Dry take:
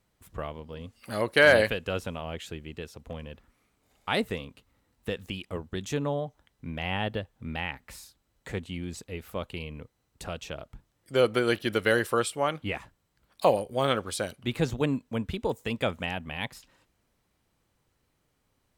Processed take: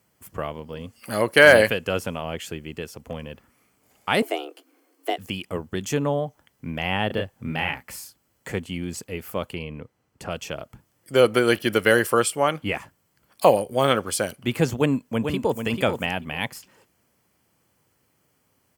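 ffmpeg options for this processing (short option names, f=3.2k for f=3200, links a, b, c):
-filter_complex "[0:a]asettb=1/sr,asplit=3[a][b][c];[a]atrim=end=4.224[d];[b]atrim=start=4.22:end=5.18,asetpts=PTS-STARTPTS,afade=t=in:d=0.004:c=qsin,afade=t=out:st=0.956:d=0.004:c=qsin,afreqshift=230[e];[c]atrim=start=5.176[f];[d][e]acrossfade=d=0.004:c1=hsin:c2=qsin[g];[g][f]acrossfade=d=0.004:c1=qsin:c2=hsin,asettb=1/sr,asplit=3[h][i][j];[h]atrim=end=7.074[k];[i]atrim=start=7.07:end=7.83,asetpts=PTS-STARTPTS,afade=t=in:d=0.004:c=qsin,afade=t=out:st=0.756:d=0.004:c=qsin,asplit=2[l][m];[m]adelay=32,volume=-3.5dB[n];[l][n]amix=inputs=2:normalize=0,atrim=end_sample=33516[o];[j]atrim=start=7.826[p];[k][o]acrossfade=d=0.004:c1=hsin:c2=qsin[q];[q][p]acrossfade=d=0.004:c1=qsin:c2=hsin,asettb=1/sr,asplit=3[r][s][t];[r]atrim=end=9.544[u];[s]atrim=start=9.54:end=10.31,asetpts=PTS-STARTPTS,afade=t=in:d=0.004:c=qsin,afade=t=out:st=0.766:d=0.004:c=qsin,lowpass=f=2.8k:p=1[v];[t]atrim=start=10.306[w];[u][v]acrossfade=d=0.004:c1=hsin:c2=qsin[x];[x][w]acrossfade=d=0.004:c1=qsin:c2=hsin,asplit=2[y][z];[z]afade=t=in:st=14.76:d=0.01,afade=t=out:st=15.61:d=0.01,aecho=0:1:440|880|1320:0.446684|0.0670025|0.0100504[aa];[y][aa]amix=inputs=2:normalize=0,highpass=100,highshelf=f=11k:g=9.5,bandreject=f=3.8k:w=5.2,volume=6dB"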